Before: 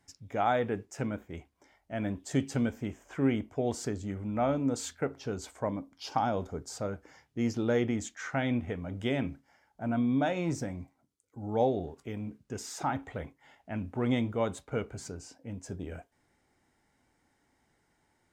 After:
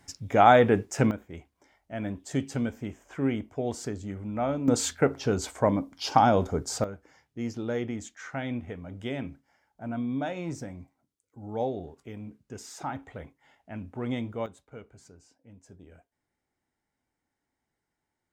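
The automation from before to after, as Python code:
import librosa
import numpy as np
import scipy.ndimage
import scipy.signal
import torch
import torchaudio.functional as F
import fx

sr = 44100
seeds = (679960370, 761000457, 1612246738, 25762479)

y = fx.gain(x, sr, db=fx.steps((0.0, 10.5), (1.11, 0.0), (4.68, 9.0), (6.84, -3.0), (14.46, -12.0)))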